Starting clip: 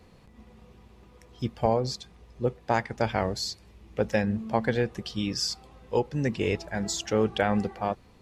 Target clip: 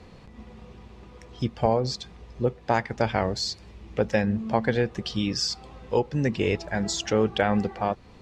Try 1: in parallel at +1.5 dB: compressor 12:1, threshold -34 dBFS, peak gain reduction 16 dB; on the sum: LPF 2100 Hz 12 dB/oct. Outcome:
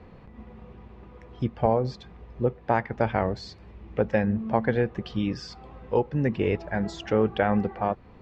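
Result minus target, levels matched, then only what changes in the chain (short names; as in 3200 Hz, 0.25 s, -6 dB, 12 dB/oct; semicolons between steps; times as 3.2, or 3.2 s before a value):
8000 Hz band -17.5 dB
change: LPF 6800 Hz 12 dB/oct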